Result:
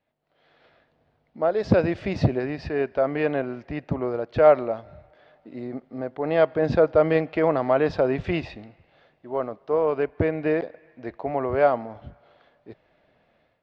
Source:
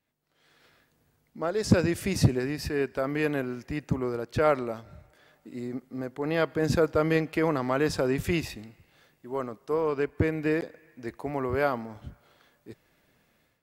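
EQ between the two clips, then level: low-pass 4 kHz 24 dB/octave; peaking EQ 650 Hz +10.5 dB 0.82 oct; 0.0 dB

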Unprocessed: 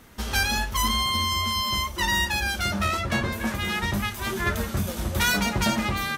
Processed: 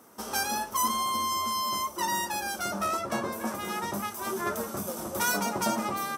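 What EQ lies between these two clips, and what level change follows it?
high-pass 290 Hz 12 dB/octave; high-order bell 2.7 kHz -11.5 dB; band-stop 6.8 kHz, Q 10; 0.0 dB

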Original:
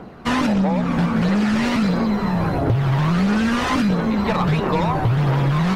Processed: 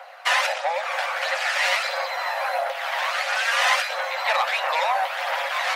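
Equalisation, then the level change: rippled Chebyshev high-pass 520 Hz, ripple 6 dB; tilt EQ +2 dB/octave; +5.0 dB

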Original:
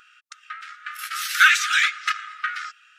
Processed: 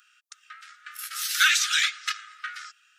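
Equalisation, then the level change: high-pass 1.4 kHz 24 dB/octave; dynamic bell 3.9 kHz, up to +6 dB, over -32 dBFS, Q 0.85; peaking EQ 2.1 kHz -11 dB 2.1 oct; +2.5 dB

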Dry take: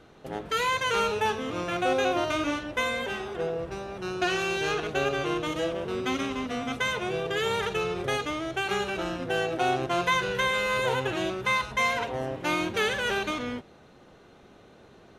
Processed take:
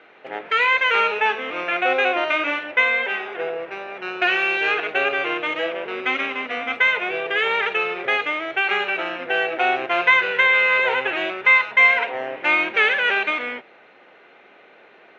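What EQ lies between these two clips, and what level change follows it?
high-pass 470 Hz 12 dB/octave; resonant low-pass 2.3 kHz, resonance Q 2.9; peaking EQ 1.1 kHz -4 dB 0.25 oct; +5.5 dB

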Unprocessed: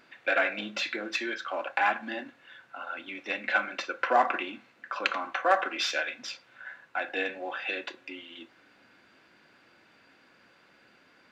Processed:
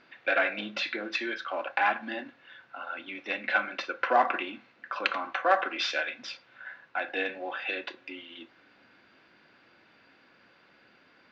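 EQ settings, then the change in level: low-pass 5.3 kHz 24 dB/octave; 0.0 dB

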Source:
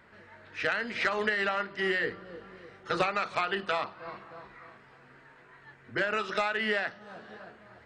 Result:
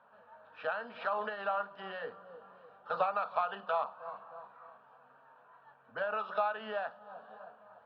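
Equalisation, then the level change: band-pass 380–4200 Hz; distance through air 450 m; static phaser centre 850 Hz, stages 4; +3.0 dB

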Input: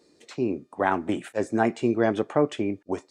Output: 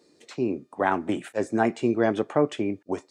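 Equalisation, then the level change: high-pass 81 Hz; 0.0 dB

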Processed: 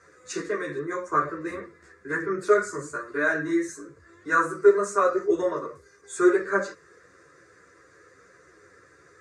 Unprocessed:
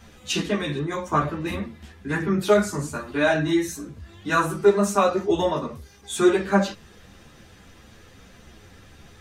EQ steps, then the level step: cabinet simulation 250–7500 Hz, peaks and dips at 650 Hz -10 dB, 2.5 kHz -7 dB, 3.9 kHz -6 dB, 5.7 kHz -6 dB; peaking EQ 4.8 kHz -2 dB; static phaser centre 840 Hz, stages 6; +2.5 dB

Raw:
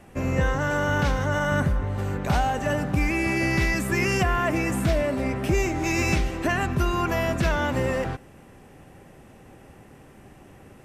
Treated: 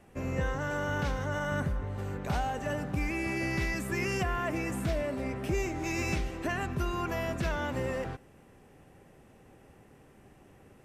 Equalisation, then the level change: peaking EQ 440 Hz +3 dB 0.32 oct; -8.5 dB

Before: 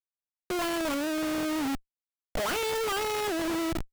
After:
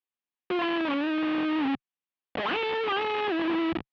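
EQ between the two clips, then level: distance through air 130 m; cabinet simulation 120–3100 Hz, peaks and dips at 130 Hz -8 dB, 440 Hz -4 dB, 630 Hz -10 dB, 930 Hz -3 dB, 1.4 kHz -8 dB, 2.1 kHz -5 dB; bass shelf 310 Hz -8.5 dB; +9.0 dB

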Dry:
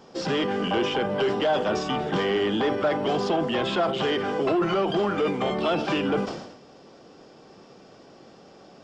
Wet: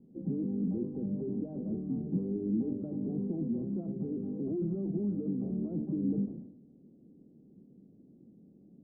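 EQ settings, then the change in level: four-pole ladder low-pass 310 Hz, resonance 40%; peaking EQ 180 Hz +3.5 dB 0.77 oct; 0.0 dB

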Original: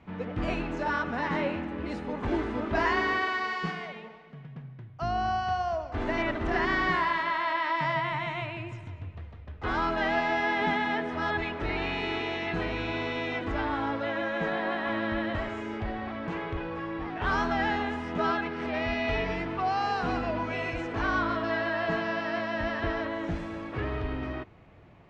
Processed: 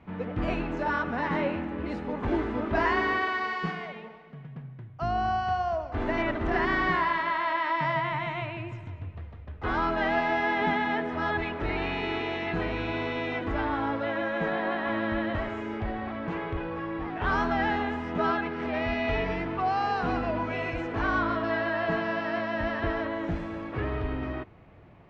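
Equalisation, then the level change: treble shelf 4.6 kHz -10 dB; +1.5 dB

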